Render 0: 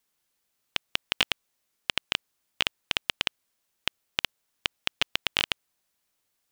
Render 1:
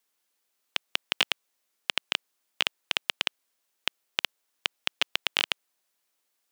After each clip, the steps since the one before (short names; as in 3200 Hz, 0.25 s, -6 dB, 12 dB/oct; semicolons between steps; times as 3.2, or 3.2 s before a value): HPF 280 Hz 12 dB/oct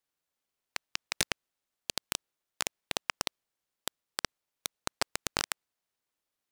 dynamic EQ 2400 Hz, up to +5 dB, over -42 dBFS, Q 1.1; noise-modulated delay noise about 1800 Hz, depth 0.11 ms; gain -9 dB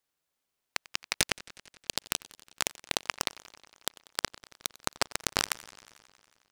warbling echo 91 ms, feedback 76%, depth 211 cents, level -21 dB; gain +3 dB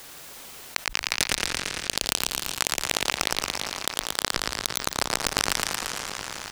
on a send: frequency-shifting echo 0.114 s, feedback 39%, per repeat -38 Hz, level -5.5 dB; on the sum: fast leveller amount 70%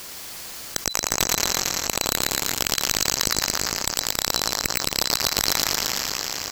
band-swap scrambler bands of 4000 Hz; overloaded stage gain 15 dB; gain +6.5 dB